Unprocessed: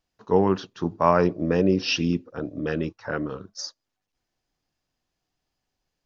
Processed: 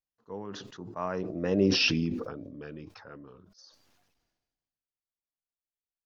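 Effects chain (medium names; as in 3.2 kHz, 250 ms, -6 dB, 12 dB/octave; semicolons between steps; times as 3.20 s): Doppler pass-by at 1.77 s, 16 m/s, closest 2.2 m; decay stretcher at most 42 dB/s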